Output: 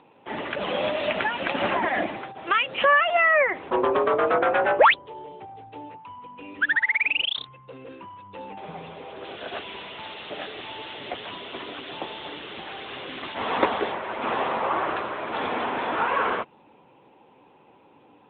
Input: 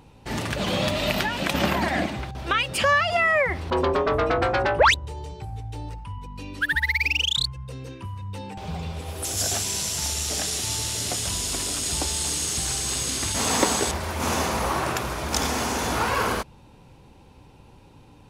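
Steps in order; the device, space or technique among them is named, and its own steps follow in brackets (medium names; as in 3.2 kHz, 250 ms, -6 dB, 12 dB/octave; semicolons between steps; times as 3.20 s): 8.32–10.15 s: dynamic bell 730 Hz, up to -3 dB, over -50 dBFS, Q 5.6; telephone (band-pass 330–3200 Hz; trim +2.5 dB; AMR-NB 10.2 kbps 8 kHz)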